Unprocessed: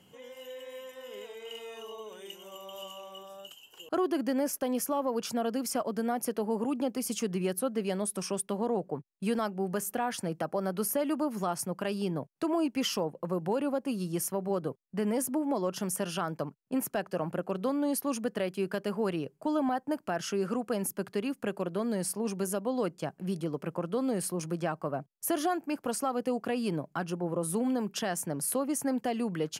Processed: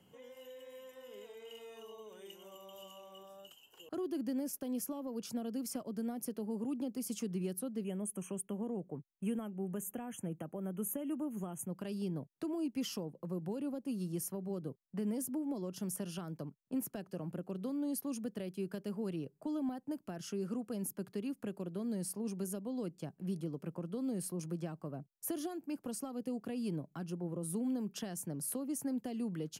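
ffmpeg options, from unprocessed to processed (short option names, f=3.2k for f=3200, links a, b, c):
-filter_complex "[0:a]asettb=1/sr,asplit=3[a][b][c];[a]atrim=end=7.844[d];[b]atrim=start=7.84:end=11.7,asetpts=PTS-STARTPTS,afade=t=in:d=0.004:c=qsin,afade=t=out:st=3.856:d=0.004:c=qsin,asuperstop=centerf=4500:order=20:qfactor=1.6[e];[c]atrim=start=11.696[f];[d][e]acrossfade=d=0.004:c1=hsin:c2=qsin[g];[g][f]acrossfade=d=0.004:c1=qsin:c2=hsin,equalizer=f=4.7k:w=0.34:g=-5,acrossover=split=360|3000[h][i][j];[i]acompressor=threshold=-49dB:ratio=3[k];[h][k][j]amix=inputs=3:normalize=0,volume=-4dB"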